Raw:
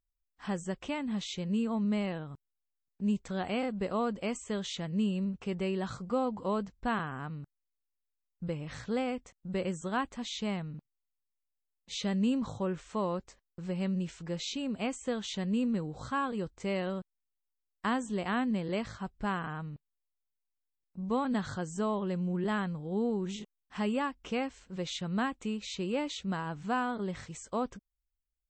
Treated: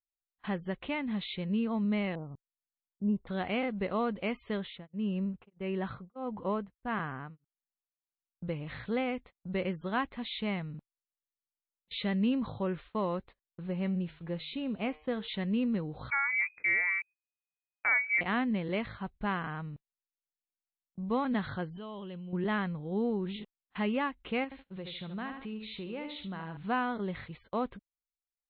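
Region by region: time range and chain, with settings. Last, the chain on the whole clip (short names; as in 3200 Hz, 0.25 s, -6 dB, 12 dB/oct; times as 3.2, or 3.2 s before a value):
2.15–3.27 low-pass opened by the level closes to 440 Hz, open at -25.5 dBFS + polynomial smoothing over 65 samples
4.57–8.48 LPF 2800 Hz + beating tremolo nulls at 1.6 Hz
13.63–15.28 high shelf 2300 Hz -5.5 dB + de-hum 153 Hz, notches 27
16.1–18.21 air absorption 330 m + inverted band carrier 2500 Hz
21.76–22.33 level quantiser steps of 21 dB + bell 3100 Hz +13 dB 0.34 oct
24.44–26.57 feedback echo 74 ms, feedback 27%, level -8.5 dB + compressor 2:1, threshold -41 dBFS
whole clip: dynamic EQ 2100 Hz, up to +6 dB, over -56 dBFS, Q 3.4; gate -48 dBFS, range -21 dB; steep low-pass 4100 Hz 96 dB/oct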